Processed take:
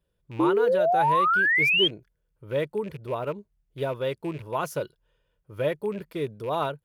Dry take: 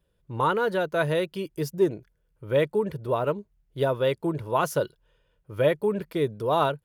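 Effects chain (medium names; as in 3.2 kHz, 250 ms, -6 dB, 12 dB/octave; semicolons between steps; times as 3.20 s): rattle on loud lows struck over -32 dBFS, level -32 dBFS; painted sound rise, 0.39–1.88 s, 310–3300 Hz -17 dBFS; trim -4.5 dB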